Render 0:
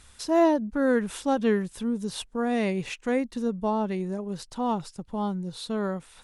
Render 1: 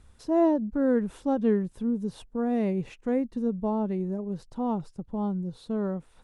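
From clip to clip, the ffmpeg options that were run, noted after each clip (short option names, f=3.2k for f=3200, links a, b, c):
-af "tiltshelf=f=1.1k:g=8.5,volume=-7dB"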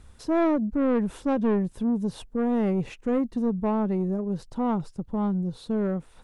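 -af "asoftclip=type=tanh:threshold=-23.5dB,volume=5dB"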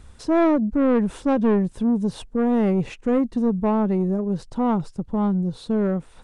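-af "aresample=22050,aresample=44100,volume=4.5dB"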